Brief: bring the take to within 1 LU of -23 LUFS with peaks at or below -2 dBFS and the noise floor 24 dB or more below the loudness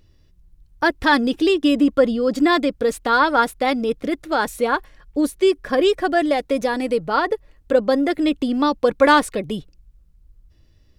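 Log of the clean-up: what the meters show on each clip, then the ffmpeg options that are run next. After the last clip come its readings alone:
loudness -19.5 LUFS; peak -2.5 dBFS; loudness target -23.0 LUFS
-> -af "volume=-3.5dB"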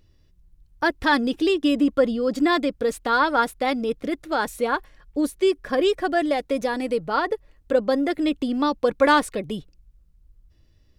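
loudness -23.0 LUFS; peak -6.0 dBFS; noise floor -59 dBFS

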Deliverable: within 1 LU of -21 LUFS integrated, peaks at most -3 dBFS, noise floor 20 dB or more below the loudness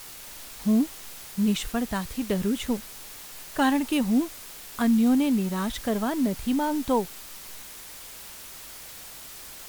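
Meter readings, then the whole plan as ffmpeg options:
noise floor -43 dBFS; noise floor target -46 dBFS; loudness -26.0 LUFS; peak -11.0 dBFS; loudness target -21.0 LUFS
-> -af "afftdn=nr=6:nf=-43"
-af "volume=5dB"

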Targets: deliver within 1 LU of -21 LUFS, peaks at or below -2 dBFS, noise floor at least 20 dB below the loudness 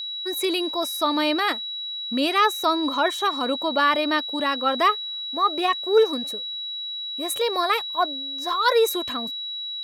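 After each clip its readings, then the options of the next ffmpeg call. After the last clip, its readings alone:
steady tone 3900 Hz; tone level -29 dBFS; loudness -23.0 LUFS; peak -7.0 dBFS; loudness target -21.0 LUFS
-> -af "bandreject=f=3.9k:w=30"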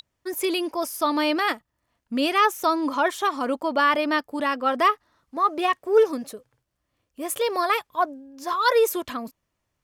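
steady tone none; loudness -23.5 LUFS; peak -7.5 dBFS; loudness target -21.0 LUFS
-> -af "volume=2.5dB"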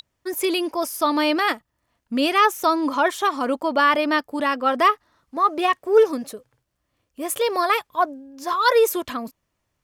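loudness -21.0 LUFS; peak -5.0 dBFS; noise floor -76 dBFS

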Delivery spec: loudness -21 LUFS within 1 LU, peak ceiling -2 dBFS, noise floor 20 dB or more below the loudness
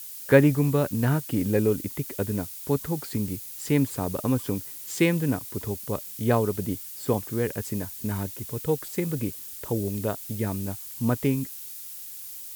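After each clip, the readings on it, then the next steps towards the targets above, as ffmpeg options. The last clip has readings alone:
noise floor -40 dBFS; noise floor target -47 dBFS; loudness -27.0 LUFS; peak -3.5 dBFS; loudness target -21.0 LUFS
-> -af "afftdn=nr=7:nf=-40"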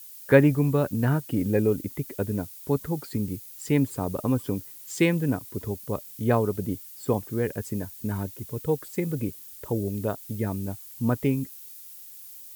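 noise floor -45 dBFS; noise floor target -47 dBFS
-> -af "afftdn=nr=6:nf=-45"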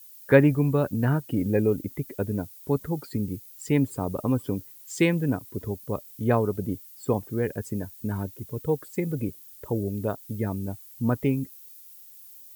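noise floor -48 dBFS; loudness -27.0 LUFS; peak -3.5 dBFS; loudness target -21.0 LUFS
-> -af "volume=6dB,alimiter=limit=-2dB:level=0:latency=1"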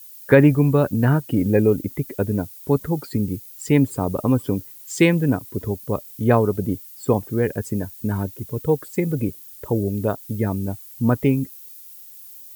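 loudness -21.5 LUFS; peak -2.0 dBFS; noise floor -42 dBFS

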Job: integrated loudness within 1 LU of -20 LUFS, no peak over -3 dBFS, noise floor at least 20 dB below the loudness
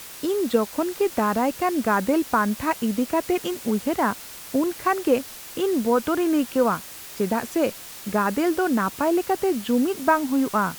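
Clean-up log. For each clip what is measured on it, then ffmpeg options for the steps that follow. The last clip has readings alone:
noise floor -40 dBFS; noise floor target -44 dBFS; loudness -23.5 LUFS; peak -7.0 dBFS; loudness target -20.0 LUFS
-> -af "afftdn=nr=6:nf=-40"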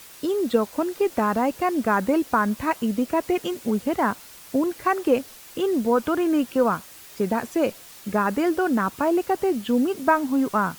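noise floor -45 dBFS; loudness -23.5 LUFS; peak -7.0 dBFS; loudness target -20.0 LUFS
-> -af "volume=3.5dB"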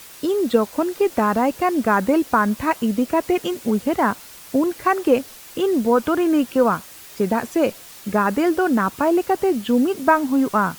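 loudness -20.0 LUFS; peak -3.5 dBFS; noise floor -42 dBFS

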